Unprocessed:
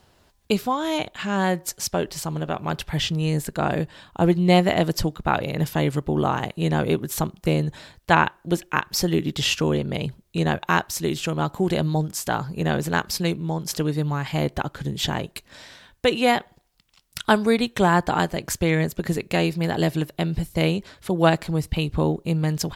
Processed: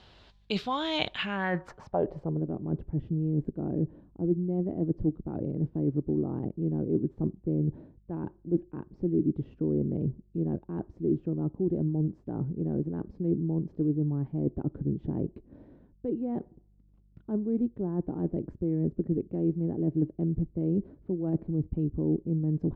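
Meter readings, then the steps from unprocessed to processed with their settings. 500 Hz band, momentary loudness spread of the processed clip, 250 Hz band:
-9.0 dB, 6 LU, -4.5 dB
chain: reverse; compressor 10:1, threshold -27 dBFS, peak gain reduction 16.5 dB; reverse; buzz 50 Hz, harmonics 4, -63 dBFS -8 dB/oct; low-pass sweep 3700 Hz -> 320 Hz, 1.09–2.45

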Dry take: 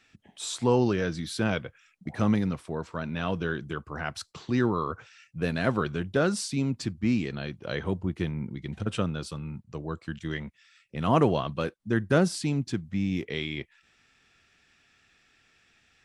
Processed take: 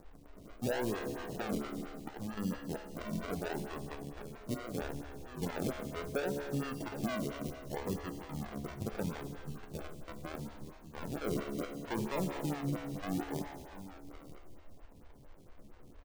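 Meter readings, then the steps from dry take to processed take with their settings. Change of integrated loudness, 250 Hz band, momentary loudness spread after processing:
-10.5 dB, -10.0 dB, 12 LU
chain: on a send: echo 0.765 s -15 dB; on the sum: step gate "xx.xx.xxx" 76 bpm -12 dB; added noise brown -45 dBFS; decimation with a swept rate 41×, swing 60% 0.72 Hz; soft clip -19 dBFS, distortion -14 dB; resonator 71 Hz, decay 1.5 s, harmonics all, mix 80%; non-linear reverb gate 0.49 s flat, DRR 10.5 dB; limiter -32 dBFS, peak gain reduction 6 dB; photocell phaser 4.4 Hz; gain +7.5 dB

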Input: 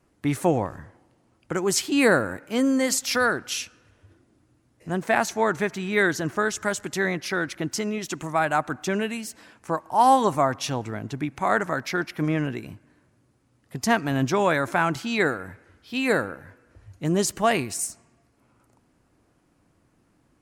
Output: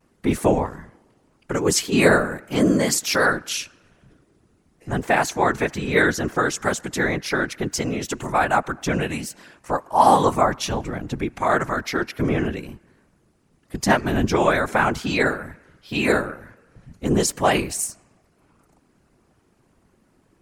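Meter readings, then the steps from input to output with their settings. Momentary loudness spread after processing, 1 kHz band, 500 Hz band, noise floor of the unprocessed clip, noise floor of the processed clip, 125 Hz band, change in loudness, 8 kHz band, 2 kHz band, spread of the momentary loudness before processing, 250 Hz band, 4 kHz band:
12 LU, +3.0 dB, +3.0 dB, -65 dBFS, -63 dBFS, +3.5 dB, +3.0 dB, +3.0 dB, +3.0 dB, 12 LU, +2.5 dB, +3.0 dB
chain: vibrato 0.41 Hz 27 cents; whisperiser; gain +3 dB

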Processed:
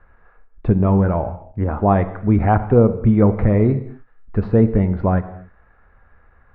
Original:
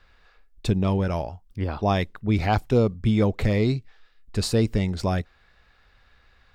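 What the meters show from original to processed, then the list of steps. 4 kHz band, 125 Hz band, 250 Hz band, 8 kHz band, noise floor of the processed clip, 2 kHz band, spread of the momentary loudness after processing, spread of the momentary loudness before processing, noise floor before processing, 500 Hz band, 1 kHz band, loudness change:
under -20 dB, +7.0 dB, +7.5 dB, under -40 dB, -54 dBFS, +0.5 dB, 11 LU, 10 LU, -60 dBFS, +7.0 dB, +7.0 dB, +7.0 dB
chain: LPF 1600 Hz 24 dB/oct; non-linear reverb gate 0.3 s falling, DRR 10 dB; ending taper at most 330 dB/s; gain +6.5 dB

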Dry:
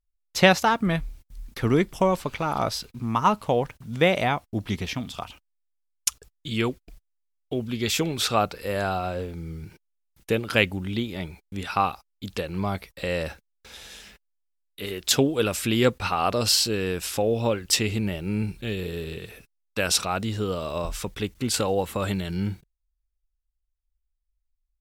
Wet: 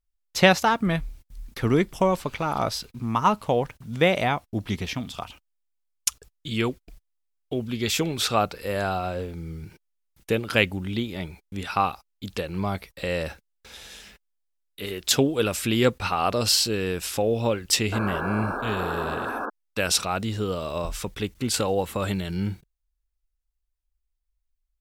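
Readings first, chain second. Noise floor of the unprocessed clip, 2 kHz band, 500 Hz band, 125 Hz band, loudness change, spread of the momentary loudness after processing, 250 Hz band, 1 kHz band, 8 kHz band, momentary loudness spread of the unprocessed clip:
-76 dBFS, +0.5 dB, 0.0 dB, 0.0 dB, 0.0 dB, 14 LU, 0.0 dB, +0.5 dB, 0.0 dB, 15 LU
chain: painted sound noise, 17.92–19.5, 210–1700 Hz -30 dBFS

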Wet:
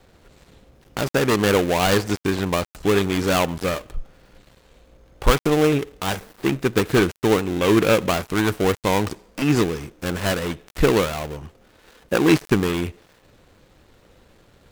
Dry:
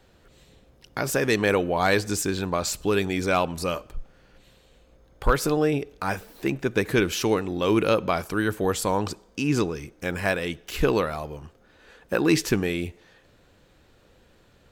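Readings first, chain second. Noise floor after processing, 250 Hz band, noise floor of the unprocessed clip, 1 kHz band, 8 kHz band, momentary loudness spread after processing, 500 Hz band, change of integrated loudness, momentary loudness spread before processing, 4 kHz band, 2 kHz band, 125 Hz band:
-56 dBFS, +4.5 dB, -58 dBFS, +3.0 dB, +1.0 dB, 11 LU, +4.0 dB, +4.0 dB, 9 LU, +5.0 dB, +2.5 dB, +5.0 dB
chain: switching dead time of 0.25 ms; gain +5 dB

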